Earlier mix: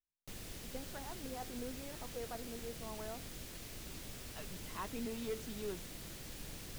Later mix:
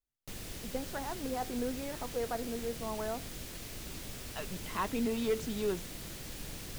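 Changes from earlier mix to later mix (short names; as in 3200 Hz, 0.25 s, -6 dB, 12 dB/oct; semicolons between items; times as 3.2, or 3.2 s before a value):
speech +9.5 dB; background +4.5 dB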